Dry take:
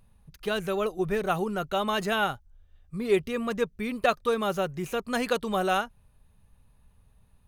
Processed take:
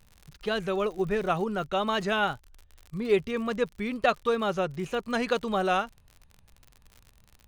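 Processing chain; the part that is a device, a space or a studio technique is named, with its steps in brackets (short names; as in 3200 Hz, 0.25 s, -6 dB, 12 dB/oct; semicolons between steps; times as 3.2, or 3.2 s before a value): lo-fi chain (LPF 6200 Hz 12 dB/oct; wow and flutter; crackle 71/s -38 dBFS)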